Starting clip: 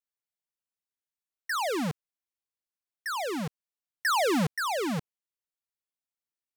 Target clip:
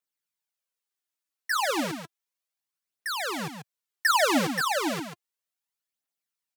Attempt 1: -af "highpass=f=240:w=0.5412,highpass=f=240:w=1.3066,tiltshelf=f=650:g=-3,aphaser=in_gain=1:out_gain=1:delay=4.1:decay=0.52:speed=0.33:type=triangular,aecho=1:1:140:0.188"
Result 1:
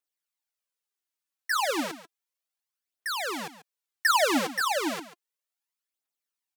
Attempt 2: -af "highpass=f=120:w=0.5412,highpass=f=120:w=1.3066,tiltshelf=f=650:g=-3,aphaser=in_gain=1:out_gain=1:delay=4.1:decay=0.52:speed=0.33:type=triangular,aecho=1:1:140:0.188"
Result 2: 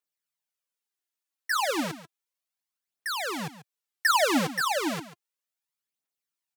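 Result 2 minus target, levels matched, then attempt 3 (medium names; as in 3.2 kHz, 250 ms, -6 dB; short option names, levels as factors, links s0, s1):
echo-to-direct -7 dB
-af "highpass=f=120:w=0.5412,highpass=f=120:w=1.3066,tiltshelf=f=650:g=-3,aphaser=in_gain=1:out_gain=1:delay=4.1:decay=0.52:speed=0.33:type=triangular,aecho=1:1:140:0.422"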